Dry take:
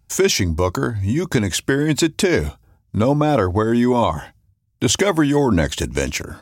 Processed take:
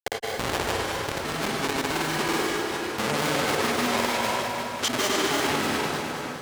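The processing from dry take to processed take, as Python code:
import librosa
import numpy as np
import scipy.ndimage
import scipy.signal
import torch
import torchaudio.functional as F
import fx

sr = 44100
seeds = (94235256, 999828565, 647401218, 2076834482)

p1 = fx.tape_start_head(x, sr, length_s=0.64)
p2 = fx.doubler(p1, sr, ms=33.0, db=-5.0)
p3 = fx.level_steps(p2, sr, step_db=17)
p4 = fx.schmitt(p3, sr, flips_db=-18.5)
p5 = fx.highpass(p4, sr, hz=910.0, slope=6)
p6 = fx.high_shelf(p5, sr, hz=12000.0, db=-6.0)
p7 = fx.rev_plate(p6, sr, seeds[0], rt60_s=2.1, hf_ratio=0.8, predelay_ms=95, drr_db=-1.0)
p8 = fx.granulator(p7, sr, seeds[1], grain_ms=100.0, per_s=20.0, spray_ms=100.0, spread_st=0)
p9 = p8 + fx.echo_feedback(p8, sr, ms=209, feedback_pct=39, wet_db=-11.0, dry=0)
p10 = fx.env_flatten(p9, sr, amount_pct=50)
y = p10 * 10.0 ** (1.0 / 20.0)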